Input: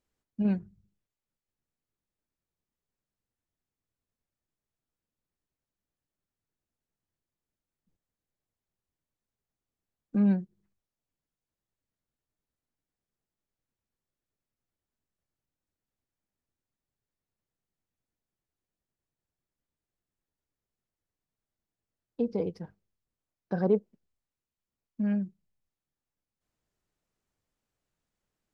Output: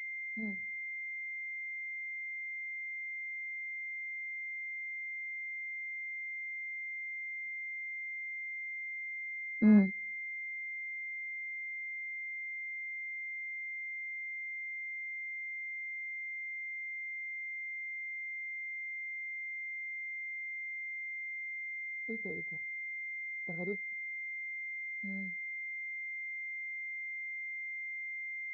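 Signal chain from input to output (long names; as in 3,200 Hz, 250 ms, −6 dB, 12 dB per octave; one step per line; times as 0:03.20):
source passing by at 0:11.52, 18 m/s, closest 15 metres
switching amplifier with a slow clock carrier 2,100 Hz
level +8.5 dB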